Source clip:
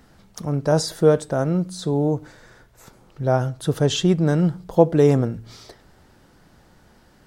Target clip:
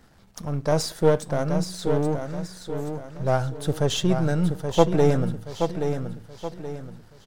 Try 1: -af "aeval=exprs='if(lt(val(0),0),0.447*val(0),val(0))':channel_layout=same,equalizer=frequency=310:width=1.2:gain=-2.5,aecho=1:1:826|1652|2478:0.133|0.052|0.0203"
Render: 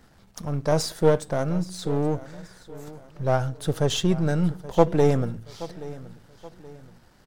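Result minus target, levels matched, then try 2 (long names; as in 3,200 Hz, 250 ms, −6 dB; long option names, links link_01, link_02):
echo-to-direct −10.5 dB
-af "aeval=exprs='if(lt(val(0),0),0.447*val(0),val(0))':channel_layout=same,equalizer=frequency=310:width=1.2:gain=-2.5,aecho=1:1:826|1652|2478|3304|4130:0.447|0.174|0.0679|0.0265|0.0103"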